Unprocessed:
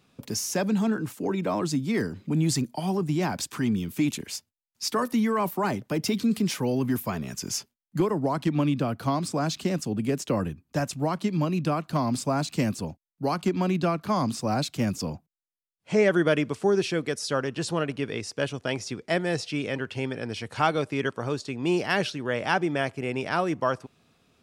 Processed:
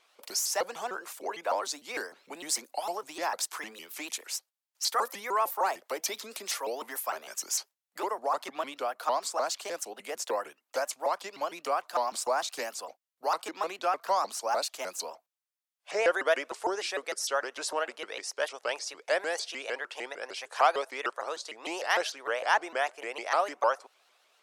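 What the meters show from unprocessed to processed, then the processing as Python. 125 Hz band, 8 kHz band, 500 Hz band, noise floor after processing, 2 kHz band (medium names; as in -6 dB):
under -35 dB, +1.0 dB, -4.5 dB, under -85 dBFS, -1.5 dB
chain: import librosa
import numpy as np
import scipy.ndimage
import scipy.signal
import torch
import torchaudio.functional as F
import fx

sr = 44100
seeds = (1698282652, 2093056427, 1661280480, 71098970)

y = scipy.signal.sosfilt(scipy.signal.butter(4, 580.0, 'highpass', fs=sr, output='sos'), x)
y = fx.dynamic_eq(y, sr, hz=2800.0, q=1.1, threshold_db=-47.0, ratio=4.0, max_db=-5)
y = fx.vibrato_shape(y, sr, shape='saw_up', rate_hz=6.6, depth_cents=250.0)
y = y * librosa.db_to_amplitude(1.5)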